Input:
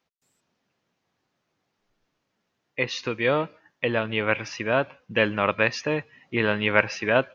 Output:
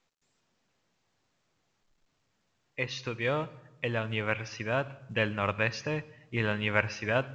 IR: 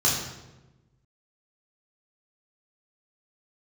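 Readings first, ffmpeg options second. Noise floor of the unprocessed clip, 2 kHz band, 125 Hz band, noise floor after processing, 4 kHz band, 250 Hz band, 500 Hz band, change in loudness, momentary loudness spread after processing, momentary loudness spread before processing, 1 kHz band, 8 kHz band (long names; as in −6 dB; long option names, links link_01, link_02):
−78 dBFS, −6.5 dB, −0.5 dB, −76 dBFS, −6.5 dB, −7.0 dB, −8.0 dB, −6.5 dB, 8 LU, 8 LU, −7.0 dB, can't be measured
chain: -filter_complex "[0:a]asubboost=boost=3.5:cutoff=140,asplit=2[link_01][link_02];[1:a]atrim=start_sample=2205,adelay=51[link_03];[link_02][link_03]afir=irnorm=-1:irlink=0,volume=-32.5dB[link_04];[link_01][link_04]amix=inputs=2:normalize=0,volume=-6.5dB" -ar 16000 -c:a pcm_mulaw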